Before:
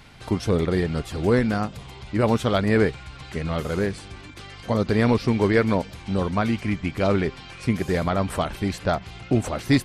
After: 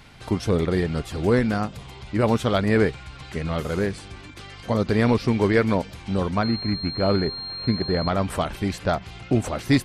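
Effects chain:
0:06.43–0:08.09: switching amplifier with a slow clock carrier 4,200 Hz

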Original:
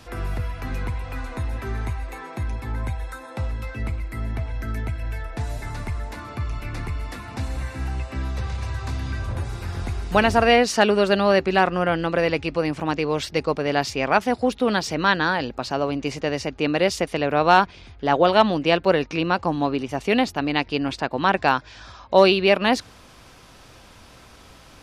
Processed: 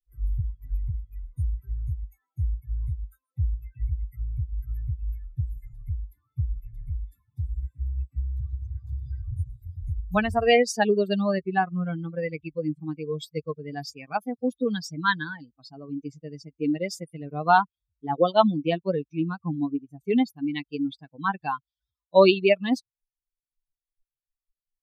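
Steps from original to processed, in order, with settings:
spectral dynamics exaggerated over time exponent 3
low-shelf EQ 470 Hz +5.5 dB

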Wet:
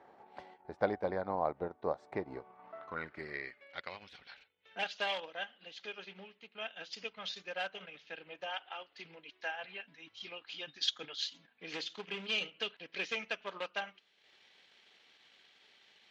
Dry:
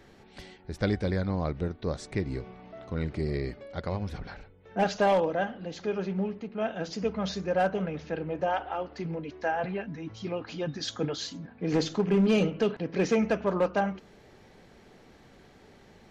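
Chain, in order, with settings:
transient designer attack +3 dB, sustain −8 dB
band-pass filter sweep 820 Hz → 3,200 Hz, 0:02.29–0:04.14
level +5 dB

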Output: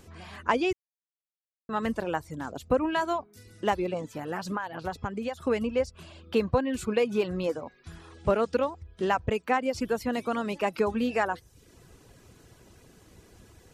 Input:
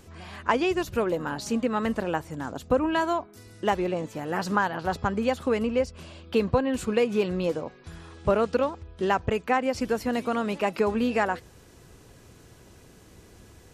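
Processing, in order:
0:04.15–0:05.43: downward compressor 5 to 1, threshold −27 dBFS, peak gain reduction 8.5 dB
reverb reduction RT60 0.55 s
0:00.73–0:01.69: silence
level −1.5 dB

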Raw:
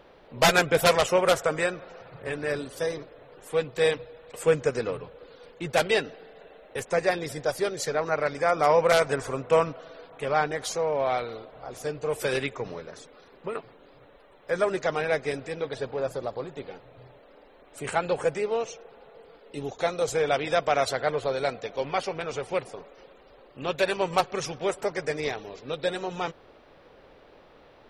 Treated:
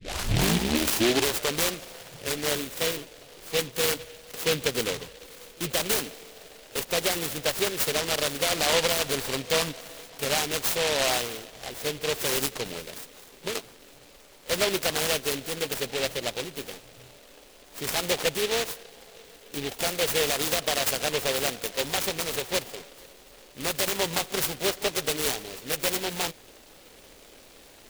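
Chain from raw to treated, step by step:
turntable start at the beginning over 1.62 s
graphic EQ with 10 bands 125 Hz −5 dB, 500 Hz −3 dB, 4,000 Hz +10 dB
brickwall limiter −17 dBFS, peak gain reduction 11.5 dB
backwards echo 36 ms −22.5 dB
short delay modulated by noise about 2,800 Hz, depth 0.21 ms
level +3 dB

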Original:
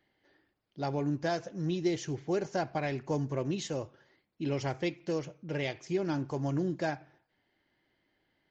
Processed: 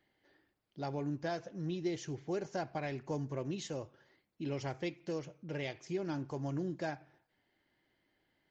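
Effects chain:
0:01.23–0:01.94: low-pass filter 5,900 Hz 12 dB per octave
in parallel at −2 dB: downward compressor, threshold −44 dBFS, peak gain reduction 18 dB
on the sum: level −7 dB

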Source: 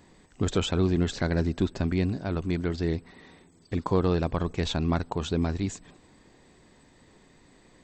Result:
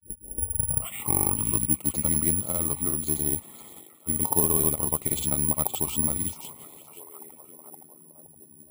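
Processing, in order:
turntable start at the beginning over 1.81 s
noise gate with hold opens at −45 dBFS
high-pass filter 84 Hz 12 dB per octave
parametric band 1,300 Hz +3.5 dB 1 octave
in parallel at 0 dB: downward compressor, threshold −36 dBFS, peak gain reduction 17.5 dB
on the sum: granular cloud, pitch spread up and down by 0 semitones
speed change −10%
Butterworth band-reject 1,600 Hz, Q 2.2
on a send: echo through a band-pass that steps 519 ms, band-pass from 3,100 Hz, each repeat −0.7 octaves, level −9 dB
on the sum: bad sample-rate conversion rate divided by 4×, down filtered, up zero stuff
level −5 dB

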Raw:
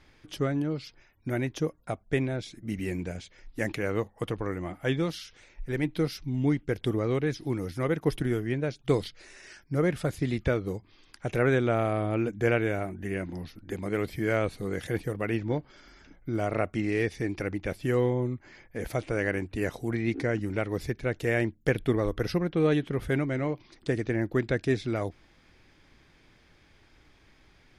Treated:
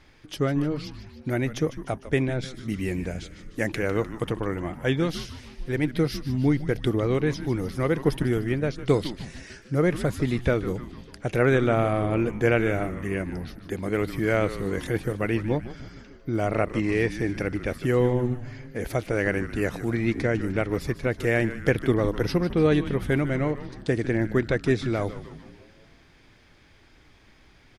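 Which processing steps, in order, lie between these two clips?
echo with shifted repeats 151 ms, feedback 56%, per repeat −130 Hz, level −12.5 dB
level +3.5 dB

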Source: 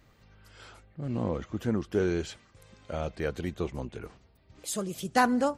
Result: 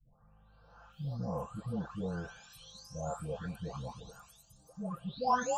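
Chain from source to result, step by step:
every frequency bin delayed by itself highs late, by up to 929 ms
phaser with its sweep stopped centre 870 Hz, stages 4
level +1 dB

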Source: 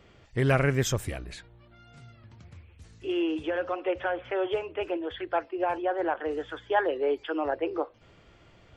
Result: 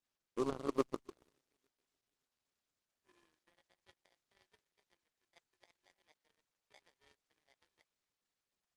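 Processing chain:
samples in bit-reversed order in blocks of 32 samples
parametric band 380 Hz +12 dB 1 octave
in parallel at +2 dB: downward compressor 5 to 1, threshold −31 dBFS, peak gain reduction 15 dB
on the sum: band-pass filter sweep 310 Hz → 2,300 Hz, 0:00.93–0:04.00
bit-depth reduction 6 bits, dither triangular
high-frequency loss of the air 80 metres
on a send: delay that swaps between a low-pass and a high-pass 286 ms, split 840 Hz, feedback 71%, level −11.5 dB
on the sum: power curve on the samples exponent 3
level −4.5 dB
Opus 16 kbit/s 48,000 Hz

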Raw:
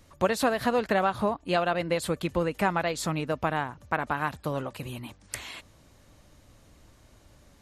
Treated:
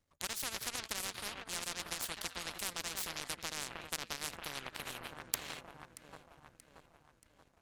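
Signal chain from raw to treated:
delay that swaps between a low-pass and a high-pass 315 ms, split 1,500 Hz, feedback 82%, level −12 dB
power curve on the samples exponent 2
every bin compressed towards the loudest bin 10 to 1
level +6.5 dB

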